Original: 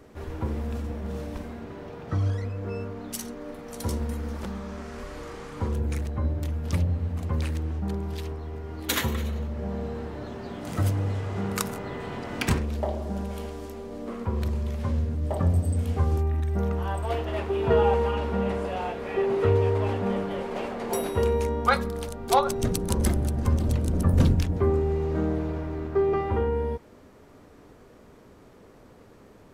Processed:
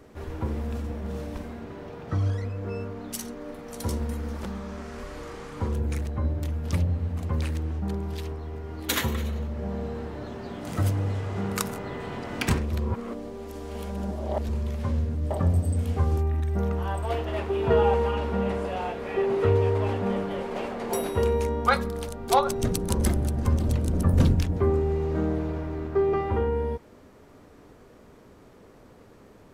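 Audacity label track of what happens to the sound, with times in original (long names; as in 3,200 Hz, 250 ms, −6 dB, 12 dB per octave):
12.720000	14.490000	reverse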